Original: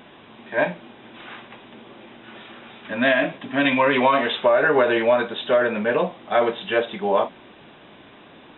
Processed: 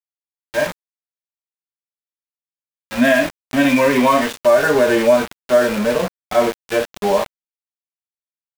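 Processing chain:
harmonic and percussive parts rebalanced percussive −14 dB
dynamic equaliser 240 Hz, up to +4 dB, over −39 dBFS, Q 5.4
centre clipping without the shift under −27 dBFS
level +6 dB

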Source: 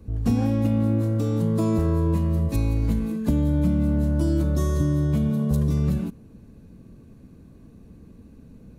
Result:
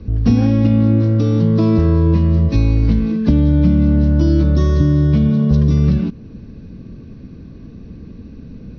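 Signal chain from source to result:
Butterworth low-pass 5,800 Hz 96 dB per octave
parametric band 810 Hz −6 dB 1.3 octaves
in parallel at −3 dB: downward compressor, threshold −34 dBFS, peak gain reduction 15.5 dB
on the sum: level +8 dB

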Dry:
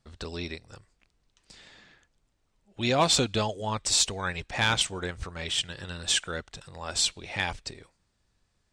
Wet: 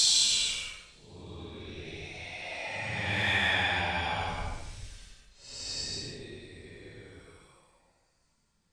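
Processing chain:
extreme stretch with random phases 9×, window 0.10 s, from 0:07.03
hum removal 64.39 Hz, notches 28

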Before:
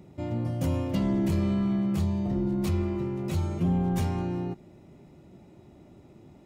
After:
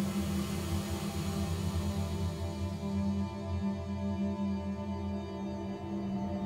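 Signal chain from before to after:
extreme stretch with random phases 21×, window 0.25 s, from 0:01.95
low-shelf EQ 390 Hz −9.5 dB

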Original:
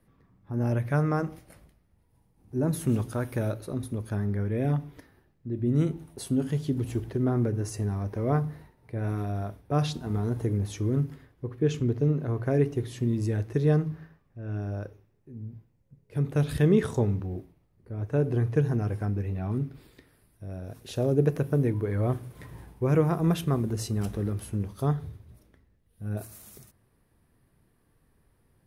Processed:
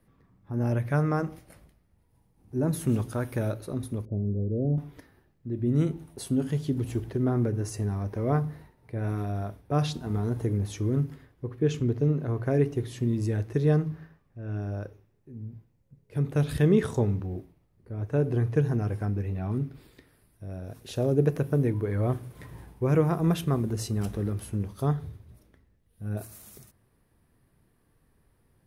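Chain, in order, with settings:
0:04.05–0:04.78: Butterworth low-pass 590 Hz 36 dB per octave

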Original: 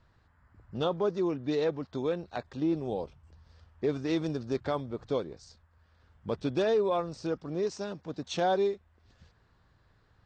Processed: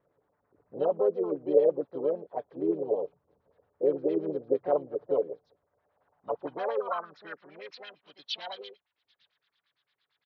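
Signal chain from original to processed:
hearing-aid frequency compression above 2,400 Hz 1.5 to 1
comb filter 6.9 ms, depth 50%
auto-filter low-pass sine 8.8 Hz 400–5,400 Hz
pitch-shifted copies added +4 semitones −6 dB
band-pass filter sweep 490 Hz → 3,700 Hz, 0:05.62–0:08.30
level +2 dB

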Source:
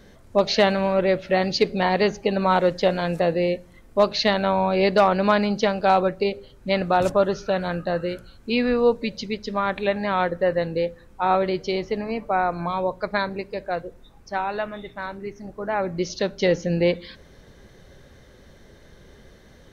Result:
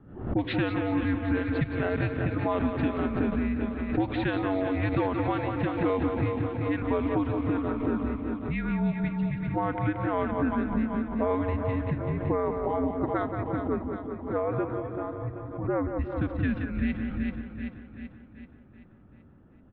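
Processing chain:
repeating echo 178 ms, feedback 43%, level −8.5 dB
low-pass that shuts in the quiet parts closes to 690 Hz, open at −9.5 dBFS
on a send: echo with a time of its own for lows and highs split 300 Hz, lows 166 ms, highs 384 ms, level −10.5 dB
on the sum: downward compressor, threshold −23 dBFS, peak gain reduction 10.5 dB
single-sideband voice off tune −290 Hz 320–3,500 Hz
background raised ahead of every attack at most 89 dB per second

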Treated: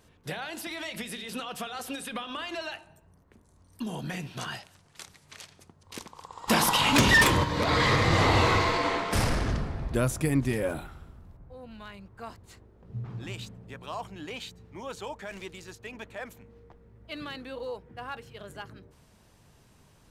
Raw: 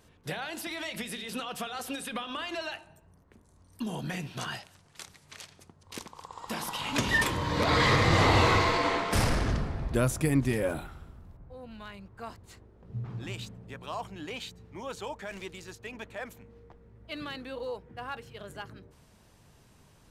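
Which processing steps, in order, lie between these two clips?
0:06.47–0:07.43: sine wavefolder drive 10 dB → 4 dB, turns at −14.5 dBFS

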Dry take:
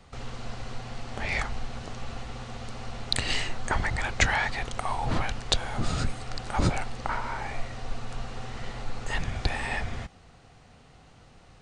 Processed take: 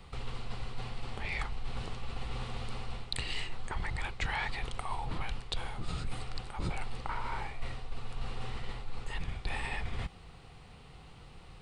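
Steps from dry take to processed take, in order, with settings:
graphic EQ with 15 bands 100 Hz −5 dB, 250 Hz −8 dB, 630 Hz −9 dB, 1,600 Hz −7 dB, 6,300 Hz −12 dB
reversed playback
downward compressor 6 to 1, threshold −36 dBFS, peak gain reduction 15.5 dB
reversed playback
level +5 dB

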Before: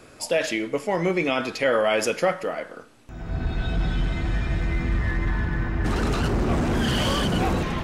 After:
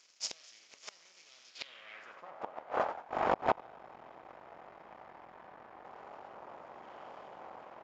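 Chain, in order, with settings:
compressor on every frequency bin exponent 0.4
noise gate −21 dBFS, range −33 dB
reversed playback
upward compression, threshold −24 dBFS
reversed playback
echo with shifted repeats 88 ms, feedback 33%, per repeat +83 Hz, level −8 dB
half-wave rectification
gate with flip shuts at −10 dBFS, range −29 dB
band-pass filter sweep 5,600 Hz → 860 Hz, 0:01.47–0:02.33
downsampling to 16,000 Hz
level +8 dB

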